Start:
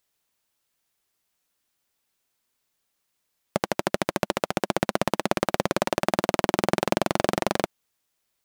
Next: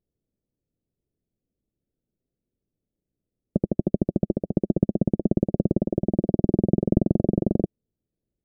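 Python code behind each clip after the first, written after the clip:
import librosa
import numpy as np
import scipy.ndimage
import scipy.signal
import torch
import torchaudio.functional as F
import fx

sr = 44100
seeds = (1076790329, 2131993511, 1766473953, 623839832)

y = fx.halfwave_hold(x, sr)
y = scipy.ndimage.gaussian_filter1d(y, 22.0, mode='constant')
y = F.gain(torch.from_numpy(y), 5.0).numpy()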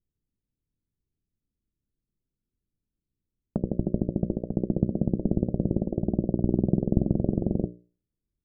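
y = fx.env_lowpass(x, sr, base_hz=370.0, full_db=-21.5)
y = fx.low_shelf(y, sr, hz=100.0, db=10.0)
y = fx.hum_notches(y, sr, base_hz=60, count=10)
y = F.gain(torch.from_numpy(y), -4.5).numpy()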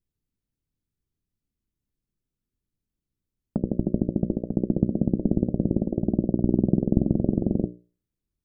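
y = fx.dynamic_eq(x, sr, hz=260.0, q=1.9, threshold_db=-38.0, ratio=4.0, max_db=5)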